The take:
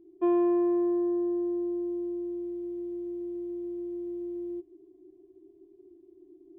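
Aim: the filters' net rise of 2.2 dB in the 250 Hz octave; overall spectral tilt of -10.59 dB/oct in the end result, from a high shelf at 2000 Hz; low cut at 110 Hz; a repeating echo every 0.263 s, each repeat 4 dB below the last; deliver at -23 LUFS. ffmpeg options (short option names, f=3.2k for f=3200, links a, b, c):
-af "highpass=110,equalizer=f=250:t=o:g=4,highshelf=f=2k:g=6,aecho=1:1:263|526|789|1052|1315|1578|1841|2104|2367:0.631|0.398|0.25|0.158|0.0994|0.0626|0.0394|0.0249|0.0157,volume=6.5dB"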